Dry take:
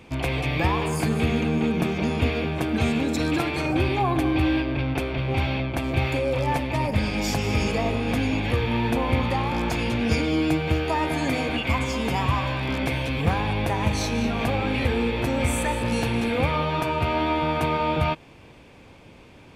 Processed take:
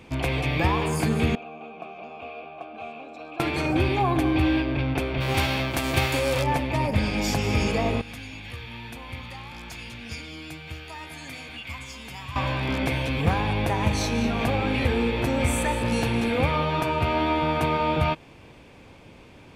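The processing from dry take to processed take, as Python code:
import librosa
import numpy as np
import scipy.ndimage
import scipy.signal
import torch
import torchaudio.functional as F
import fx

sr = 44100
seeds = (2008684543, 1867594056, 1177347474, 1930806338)

y = fx.vowel_filter(x, sr, vowel='a', at=(1.35, 3.4))
y = fx.envelope_flatten(y, sr, power=0.6, at=(5.2, 6.42), fade=0.02)
y = fx.tone_stack(y, sr, knobs='5-5-5', at=(8.01, 12.36))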